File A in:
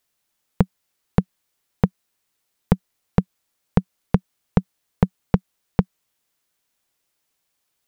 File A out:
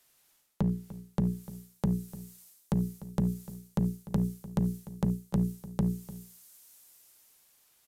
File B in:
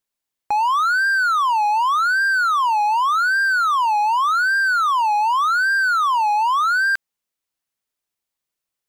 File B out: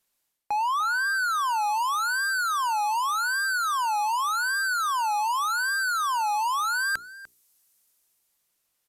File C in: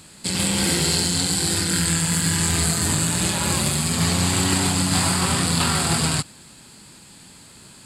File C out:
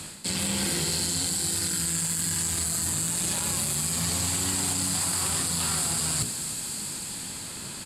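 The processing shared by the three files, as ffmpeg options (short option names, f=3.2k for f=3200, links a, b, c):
-filter_complex "[0:a]highshelf=f=11k:g=7,bandreject=f=60:t=h:w=6,bandreject=f=120:t=h:w=6,bandreject=f=180:t=h:w=6,bandreject=f=240:t=h:w=6,bandreject=f=300:t=h:w=6,bandreject=f=360:t=h:w=6,bandreject=f=420:t=h:w=6,acrossover=split=140|5200[a][b][c];[c]dynaudnorm=f=230:g=11:m=13dB[d];[a][b][d]amix=inputs=3:normalize=0,alimiter=limit=-9.5dB:level=0:latency=1:release=15,areverse,acompressor=threshold=-32dB:ratio=6,areverse,asoftclip=type=hard:threshold=-27.5dB,asplit=2[e][f];[f]adelay=297.4,volume=-16dB,highshelf=f=4k:g=-6.69[g];[e][g]amix=inputs=2:normalize=0,aresample=32000,aresample=44100,volume=7dB"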